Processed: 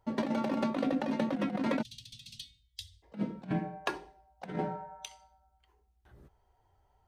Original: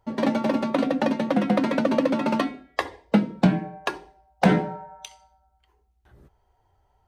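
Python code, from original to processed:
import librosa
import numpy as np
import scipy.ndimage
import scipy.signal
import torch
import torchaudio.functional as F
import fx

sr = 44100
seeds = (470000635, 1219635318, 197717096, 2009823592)

y = fx.cheby1_bandstop(x, sr, low_hz=110.0, high_hz=3400.0, order=4, at=(1.81, 3.02), fade=0.02)
y = fx.over_compress(y, sr, threshold_db=-24.0, ratio=-0.5)
y = y * 10.0 ** (-7.0 / 20.0)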